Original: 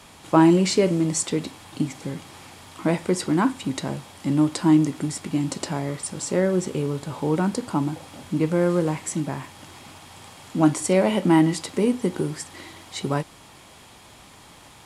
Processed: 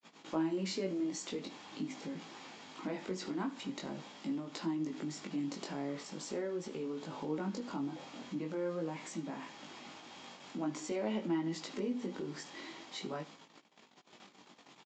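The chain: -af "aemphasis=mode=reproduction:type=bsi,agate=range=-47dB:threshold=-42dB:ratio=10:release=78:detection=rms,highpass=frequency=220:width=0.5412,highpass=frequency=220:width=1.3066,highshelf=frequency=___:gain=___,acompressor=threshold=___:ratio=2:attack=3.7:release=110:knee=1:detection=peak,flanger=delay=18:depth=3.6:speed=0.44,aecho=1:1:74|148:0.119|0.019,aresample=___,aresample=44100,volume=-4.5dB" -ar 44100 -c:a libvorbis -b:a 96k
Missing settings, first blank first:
2700, 9, -35dB, 16000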